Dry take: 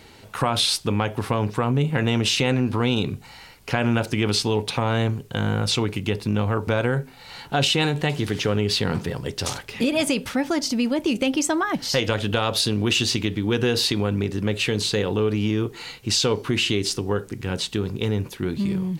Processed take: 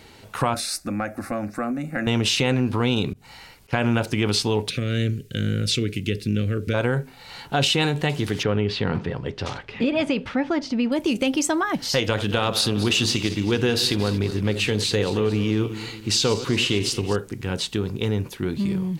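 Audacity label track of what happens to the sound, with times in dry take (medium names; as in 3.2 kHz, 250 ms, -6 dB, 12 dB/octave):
0.540000	2.070000	static phaser centre 640 Hz, stages 8
3.130000	3.730000	slow attack 188 ms
4.690000	6.740000	Butterworth band-stop 890 Hz, Q 0.7
8.430000	10.920000	low-pass 3 kHz
12.050000	17.160000	backward echo that repeats 113 ms, feedback 66%, level -13 dB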